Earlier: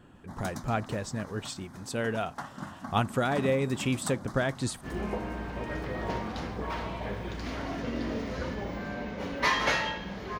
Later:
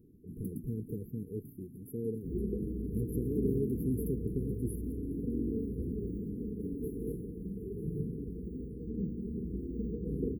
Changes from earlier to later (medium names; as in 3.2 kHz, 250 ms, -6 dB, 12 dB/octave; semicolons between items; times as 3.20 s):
speech: add tilt shelf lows -5 dB, about 700 Hz; second sound: entry -2.60 s; master: add brick-wall FIR band-stop 480–10000 Hz